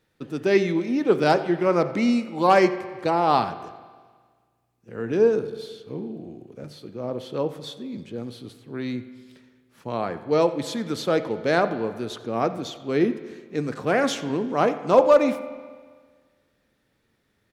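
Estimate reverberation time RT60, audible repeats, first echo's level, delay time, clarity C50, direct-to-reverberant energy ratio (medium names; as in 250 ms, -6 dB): 1.6 s, 1, -19.5 dB, 89 ms, 12.0 dB, 10.5 dB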